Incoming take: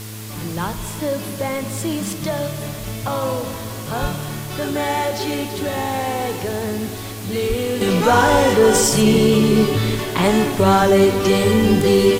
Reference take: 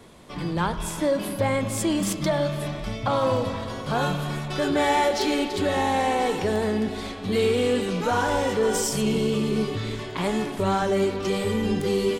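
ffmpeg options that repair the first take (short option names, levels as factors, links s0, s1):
-filter_complex "[0:a]bandreject=f=108.1:t=h:w=4,bandreject=f=216.2:t=h:w=4,bandreject=f=324.3:t=h:w=4,bandreject=f=432.4:t=h:w=4,asplit=3[s0][s1][s2];[s0]afade=t=out:st=4.01:d=0.02[s3];[s1]highpass=f=140:w=0.5412,highpass=f=140:w=1.3066,afade=t=in:st=4.01:d=0.02,afade=t=out:st=4.13:d=0.02[s4];[s2]afade=t=in:st=4.13:d=0.02[s5];[s3][s4][s5]amix=inputs=3:normalize=0,asplit=3[s6][s7][s8];[s6]afade=t=out:st=7.48:d=0.02[s9];[s7]highpass=f=140:w=0.5412,highpass=f=140:w=1.3066,afade=t=in:st=7.48:d=0.02,afade=t=out:st=7.6:d=0.02[s10];[s8]afade=t=in:st=7.6:d=0.02[s11];[s9][s10][s11]amix=inputs=3:normalize=0,afwtdn=0.016,asetnsamples=n=441:p=0,asendcmd='7.81 volume volume -9.5dB',volume=1"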